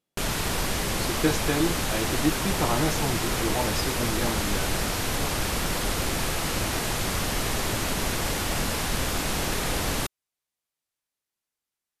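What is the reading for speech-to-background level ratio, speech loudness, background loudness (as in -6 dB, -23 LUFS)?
-2.5 dB, -29.5 LUFS, -27.0 LUFS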